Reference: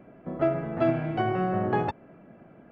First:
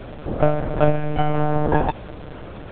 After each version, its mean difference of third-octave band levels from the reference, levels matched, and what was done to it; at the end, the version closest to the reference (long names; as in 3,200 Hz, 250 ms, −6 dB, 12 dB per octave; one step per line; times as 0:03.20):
5.5 dB: converter with a step at zero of −40 dBFS
parametric band 2,000 Hz −3.5 dB 0.52 octaves
one-pitch LPC vocoder at 8 kHz 150 Hz
level +7.5 dB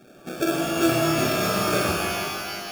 16.0 dB: spectral envelope exaggerated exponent 3
sample-rate reduction 1,000 Hz, jitter 0%
reverb with rising layers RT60 2 s, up +12 semitones, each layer −2 dB, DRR 0 dB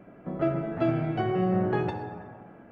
3.0 dB: parametric band 1,400 Hz +2 dB
dense smooth reverb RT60 1.5 s, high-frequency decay 0.55×, DRR 4.5 dB
dynamic equaliser 1,100 Hz, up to −5 dB, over −39 dBFS, Q 0.71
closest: third